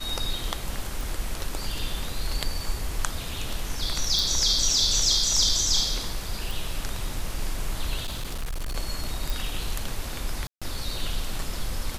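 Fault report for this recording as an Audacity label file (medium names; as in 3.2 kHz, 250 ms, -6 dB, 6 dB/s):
1.010000	1.010000	pop
4.190000	4.190000	pop
6.510000	6.510000	pop
8.030000	8.760000	clipped -26.5 dBFS
9.300000	9.300000	pop
10.470000	10.620000	dropout 146 ms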